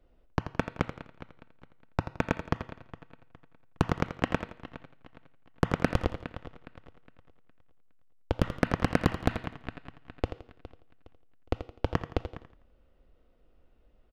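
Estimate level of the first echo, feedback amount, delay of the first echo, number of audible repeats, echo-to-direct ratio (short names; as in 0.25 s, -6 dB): -11.0 dB, 35%, 84 ms, 3, -10.5 dB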